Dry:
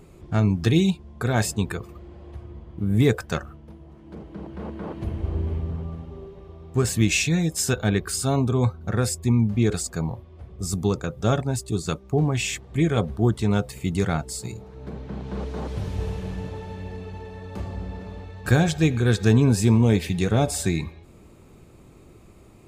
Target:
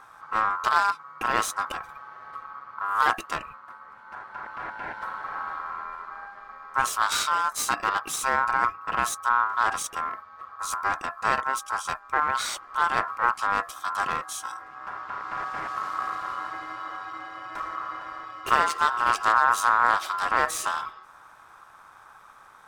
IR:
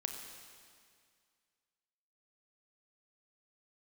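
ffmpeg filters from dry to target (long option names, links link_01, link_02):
-filter_complex "[0:a]asettb=1/sr,asplit=3[link_01][link_02][link_03];[link_01]atrim=end=4.704[link_04];[link_02]atrim=start=4.7:end=6.01,asetpts=PTS-STARTPTS,afade=type=in:duration=0.004:curve=qsin,afade=type=out:start_time=1.306:duration=0.004:curve=qsin,highpass=frequency=100:width=0.5412,highpass=frequency=100:width=1.3066[link_05];[link_03]atrim=start=6.006[link_06];[link_04][link_05]acrossfade=duration=0.004:curve1=hsin:curve2=qsin[link_07];[link_07][link_06]acrossfade=duration=0.004:curve1=qsin:curve2=hsin,aeval=exprs='clip(val(0),-1,0.0398)':channel_layout=same,aeval=exprs='val(0)*sin(2*PI*1200*n/s)':channel_layout=same,volume=1.5dB"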